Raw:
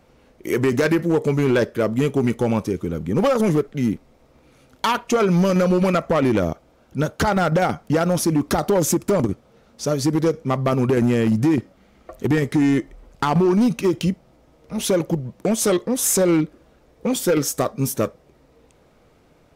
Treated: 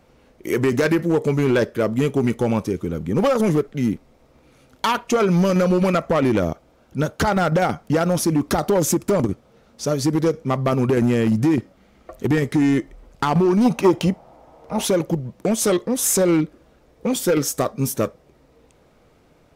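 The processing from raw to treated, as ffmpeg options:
ffmpeg -i in.wav -filter_complex "[0:a]asplit=3[link_01][link_02][link_03];[link_01]afade=type=out:start_time=13.64:duration=0.02[link_04];[link_02]equalizer=frequency=810:width=1.1:gain=15,afade=type=in:start_time=13.64:duration=0.02,afade=type=out:start_time=14.86:duration=0.02[link_05];[link_03]afade=type=in:start_time=14.86:duration=0.02[link_06];[link_04][link_05][link_06]amix=inputs=3:normalize=0" out.wav

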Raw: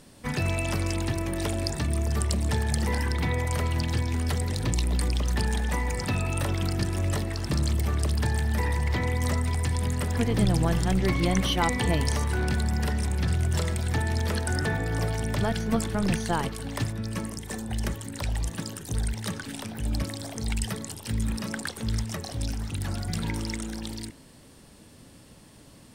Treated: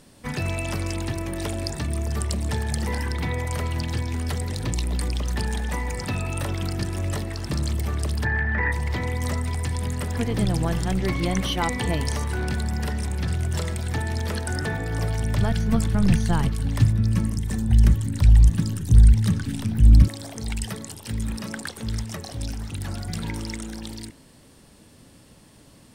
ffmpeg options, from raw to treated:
ffmpeg -i in.wav -filter_complex "[0:a]asplit=3[link_01][link_02][link_03];[link_01]afade=type=out:start_time=8.24:duration=0.02[link_04];[link_02]lowpass=frequency=1800:width_type=q:width=4.8,afade=type=in:start_time=8.24:duration=0.02,afade=type=out:start_time=8.71:duration=0.02[link_05];[link_03]afade=type=in:start_time=8.71:duration=0.02[link_06];[link_04][link_05][link_06]amix=inputs=3:normalize=0,asettb=1/sr,asplit=3[link_07][link_08][link_09];[link_07]atrim=end=14.834[link_10];[link_08]atrim=start=14.83:end=20.08,asetpts=PTS-STARTPTS,afade=type=in:duration=0.004:curve=qsin,afade=type=out:start_time=5.246:duration=0.004:curve=qsin,asubboost=boost=8.5:cutoff=200[link_11];[link_09]atrim=start=20.076[link_12];[link_10][link_11]acrossfade=duration=0.004:curve1=hsin:curve2=qsin[link_13];[link_13][link_12]acrossfade=duration=0.004:curve1=qsin:curve2=hsin" out.wav

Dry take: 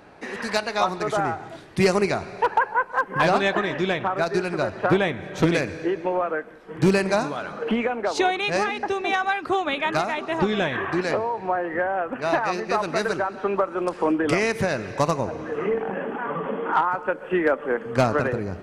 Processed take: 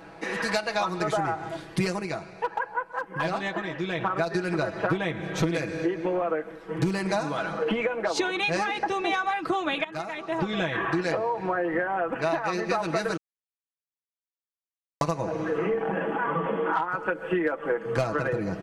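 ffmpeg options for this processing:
ffmpeg -i in.wav -filter_complex "[0:a]asplit=6[link_01][link_02][link_03][link_04][link_05][link_06];[link_01]atrim=end=2.03,asetpts=PTS-STARTPTS,afade=type=out:start_time=1.87:duration=0.16:silence=0.334965[link_07];[link_02]atrim=start=2.03:end=3.92,asetpts=PTS-STARTPTS,volume=-9.5dB[link_08];[link_03]atrim=start=3.92:end=9.84,asetpts=PTS-STARTPTS,afade=type=in:duration=0.16:silence=0.334965,afade=type=out:start_time=5.916:duration=0.004:curve=hsin:silence=0.1[link_09];[link_04]atrim=start=9.84:end=13.17,asetpts=PTS-STARTPTS,afade=type=in:duration=1.23:silence=0.1,afade=type=out:start_time=3.326:duration=0.004:curve=hsin[link_10];[link_05]atrim=start=13.17:end=15.01,asetpts=PTS-STARTPTS,volume=0[link_11];[link_06]atrim=start=15.01,asetpts=PTS-STARTPTS,afade=type=in:duration=0.004:curve=hsin[link_12];[link_07][link_08][link_09][link_10][link_11][link_12]concat=n=6:v=0:a=1,aecho=1:1:6.1:0.73,acompressor=threshold=-24dB:ratio=6,volume=1dB" out.wav

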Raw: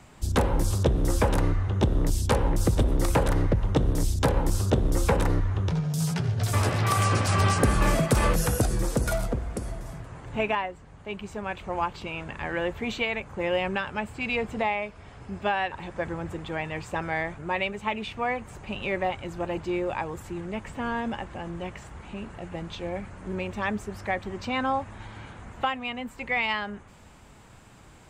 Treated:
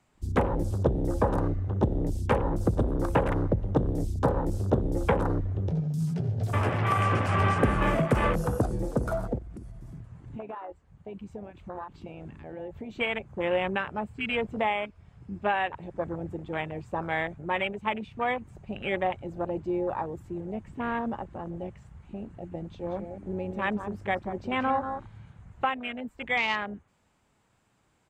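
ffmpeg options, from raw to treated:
ffmpeg -i in.wav -filter_complex "[0:a]asettb=1/sr,asplit=3[link_01][link_02][link_03];[link_01]atrim=end=9.384[link_04];[link_02]atrim=start=9.38:end=12.98,asetpts=PTS-STARTPTS,afade=type=in:duration=0.004:curve=qsin,afade=type=out:start_time=3.596:duration=0.004:curve=qsin,acompressor=threshold=-32dB:ratio=12:attack=3.2:release=140:knee=1:detection=peak[link_05];[link_03]atrim=start=12.976[link_06];[link_04][link_05]acrossfade=duration=0.004:curve1=hsin:curve2=qsin[link_07];[link_07][link_06]acrossfade=duration=0.004:curve1=qsin:curve2=hsin,asplit=3[link_08][link_09][link_10];[link_08]afade=type=out:start_time=22.85:duration=0.02[link_11];[link_09]aecho=1:1:184:0.422,afade=type=in:start_time=22.85:duration=0.02,afade=type=out:start_time=25.17:duration=0.02[link_12];[link_10]afade=type=in:start_time=25.17:duration=0.02[link_13];[link_11][link_12][link_13]amix=inputs=3:normalize=0,afwtdn=0.0251,lowshelf=frequency=65:gain=-9.5" out.wav

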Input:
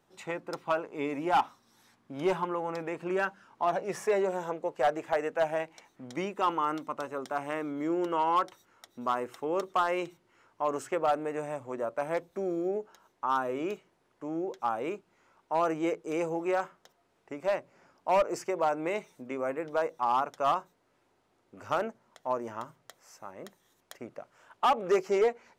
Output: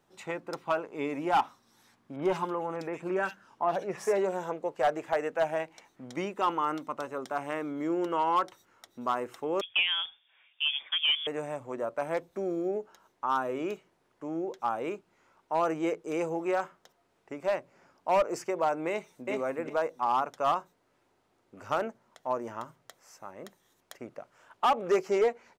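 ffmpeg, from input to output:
ffmpeg -i in.wav -filter_complex "[0:a]asettb=1/sr,asplit=3[link_01][link_02][link_03];[link_01]atrim=end=2.164[link_04];[link_02]atrim=start=2.16:end=4.18,asetpts=PTS-STARTPTS,afade=type=in:duration=0.004:curve=qsin,afade=type=out:start_time=2.016:duration=0.004:curve=qsin,acrossover=split=2400[link_05][link_06];[link_06]adelay=60[link_07];[link_05][link_07]amix=inputs=2:normalize=0,atrim=end_sample=89082[link_08];[link_03]atrim=start=4.176[link_09];[link_04][link_08]acrossfade=duration=0.004:curve1=hsin:curve2=qsin[link_10];[link_10][link_09]acrossfade=duration=0.004:curve1=qsin:curve2=hsin,asettb=1/sr,asplit=3[link_11][link_12][link_13];[link_11]atrim=end=9.614[link_14];[link_12]atrim=start=9.61:end=11.27,asetpts=PTS-STARTPTS,afade=type=in:duration=0.004:curve=qsin,afade=type=out:start_time=1.656:duration=0.004:curve=qsin,lowpass=frequency=3100:width_type=q:width=0.5098,lowpass=frequency=3100:width_type=q:width=0.6013,lowpass=frequency=3100:width_type=q:width=0.9,lowpass=frequency=3100:width_type=q:width=2.563,afreqshift=-3700[link_15];[link_13]atrim=start=11.266[link_16];[link_14][link_15]acrossfade=duration=0.004:curve1=hsin:curve2=qsin[link_17];[link_17][link_16]acrossfade=duration=0.004:curve1=qsin:curve2=hsin,asplit=2[link_18][link_19];[link_19]afade=type=in:start_time=18.89:duration=0.01,afade=type=out:start_time=19.31:duration=0.01,aecho=0:1:380|760|1140:0.841395|0.126209|0.0189314[link_20];[link_18][link_20]amix=inputs=2:normalize=0" out.wav

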